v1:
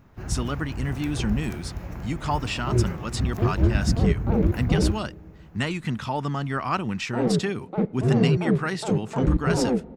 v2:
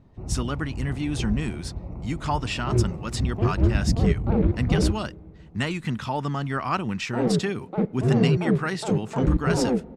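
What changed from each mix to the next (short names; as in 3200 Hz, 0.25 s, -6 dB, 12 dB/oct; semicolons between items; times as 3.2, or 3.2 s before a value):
first sound: add running mean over 27 samples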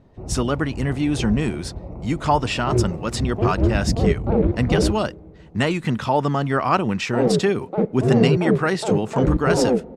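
speech +4.0 dB; master: add bell 530 Hz +7.5 dB 1.5 oct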